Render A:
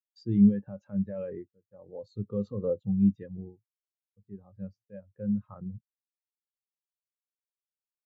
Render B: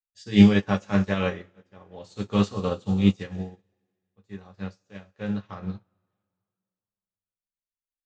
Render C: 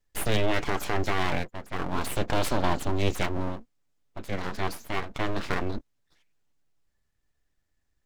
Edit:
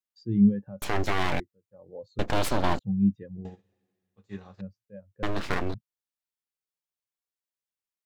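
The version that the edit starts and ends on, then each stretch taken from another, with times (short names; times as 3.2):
A
0.82–1.4 from C
2.19–2.79 from C
3.45–4.61 from B
5.23–5.74 from C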